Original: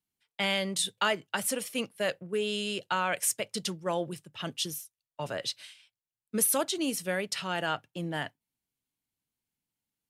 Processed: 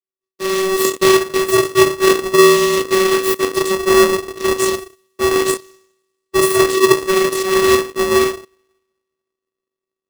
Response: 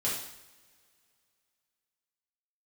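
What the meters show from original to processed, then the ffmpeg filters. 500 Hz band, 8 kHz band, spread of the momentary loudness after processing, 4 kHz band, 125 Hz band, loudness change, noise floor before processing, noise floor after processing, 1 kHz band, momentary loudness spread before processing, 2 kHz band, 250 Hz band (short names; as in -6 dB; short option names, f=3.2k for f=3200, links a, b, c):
+21.0 dB, +10.5 dB, 8 LU, +11.5 dB, +10.0 dB, +16.5 dB, under -85 dBFS, under -85 dBFS, +16.0 dB, 11 LU, +14.0 dB, +18.0 dB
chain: -filter_complex "[0:a]acrossover=split=190|3400[a][b][c];[a]crystalizer=i=9:c=0[d];[d][b][c]amix=inputs=3:normalize=0,dynaudnorm=f=360:g=3:m=15dB,asplit=2[e][f];[f]asoftclip=type=tanh:threshold=-19dB,volume=-10.5dB[g];[e][g]amix=inputs=2:normalize=0,adynamicsmooth=sensitivity=7.5:basefreq=3.8k,lowshelf=f=110:g=11.5[h];[1:a]atrim=start_sample=2205,asetrate=79380,aresample=44100[i];[h][i]afir=irnorm=-1:irlink=0,afwtdn=0.0562,aeval=exprs='abs(val(0))':c=same,bass=f=250:g=11,treble=f=4k:g=9,aeval=exprs='val(0)*sgn(sin(2*PI*380*n/s))':c=same,volume=-8dB"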